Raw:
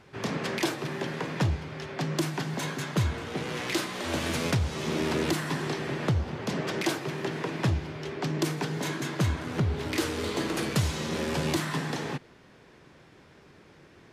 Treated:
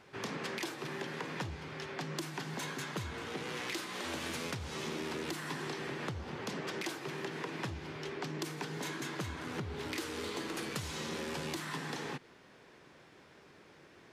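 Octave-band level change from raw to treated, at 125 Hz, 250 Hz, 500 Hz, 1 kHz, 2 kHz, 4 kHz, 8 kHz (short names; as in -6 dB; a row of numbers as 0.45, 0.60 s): -14.0, -10.5, -9.0, -7.0, -6.5, -7.0, -7.5 dB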